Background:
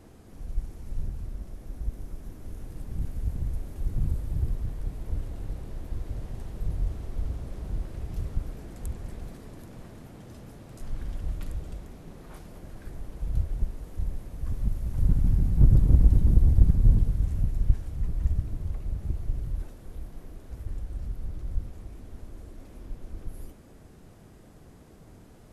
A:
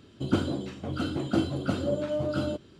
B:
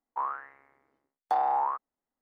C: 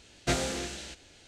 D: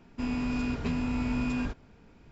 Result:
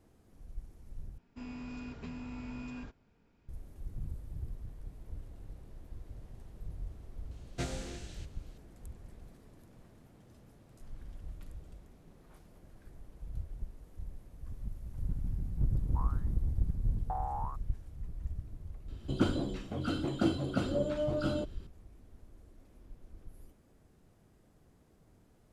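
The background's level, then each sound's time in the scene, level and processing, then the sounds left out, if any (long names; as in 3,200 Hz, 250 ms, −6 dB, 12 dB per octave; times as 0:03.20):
background −13 dB
0:01.18: overwrite with D −13 dB
0:07.31: mix in C −12.5 dB + low-shelf EQ 250 Hz +9.5 dB
0:15.79: mix in B −10.5 dB + low-pass filter 1,100 Hz
0:18.88: mix in A −3.5 dB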